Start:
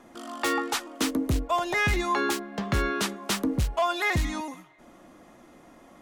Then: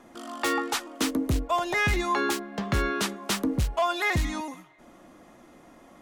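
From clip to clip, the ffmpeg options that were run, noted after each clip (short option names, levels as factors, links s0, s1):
-af anull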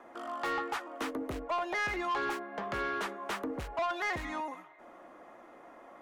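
-filter_complex "[0:a]acrossover=split=380 2200:gain=0.126 1 0.158[s0][s1][s2];[s0][s1][s2]amix=inputs=3:normalize=0,asplit=2[s3][s4];[s4]acompressor=threshold=0.0112:ratio=6,volume=0.944[s5];[s3][s5]amix=inputs=2:normalize=0,asoftclip=type=tanh:threshold=0.0531,volume=0.75"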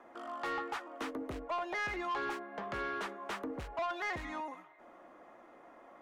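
-af "highshelf=f=9900:g=-8,volume=0.668"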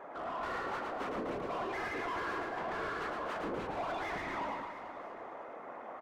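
-filter_complex "[0:a]afftfilt=real='hypot(re,im)*cos(2*PI*random(0))':imag='hypot(re,im)*sin(2*PI*random(1))':win_size=512:overlap=0.75,asplit=2[s0][s1];[s1]highpass=f=720:p=1,volume=20,asoftclip=type=tanh:threshold=0.0335[s2];[s0][s2]amix=inputs=2:normalize=0,lowpass=f=1000:p=1,volume=0.501,asplit=2[s3][s4];[s4]aecho=0:1:110|253|438.9|680.6|994.7:0.631|0.398|0.251|0.158|0.1[s5];[s3][s5]amix=inputs=2:normalize=0"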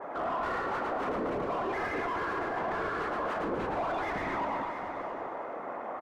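-af "aecho=1:1:670:0.178,alimiter=level_in=2.66:limit=0.0631:level=0:latency=1:release=28,volume=0.376,adynamicequalizer=threshold=0.00178:dfrequency=2100:dqfactor=0.7:tfrequency=2100:tqfactor=0.7:attack=5:release=100:ratio=0.375:range=3:mode=cutabove:tftype=highshelf,volume=2.51"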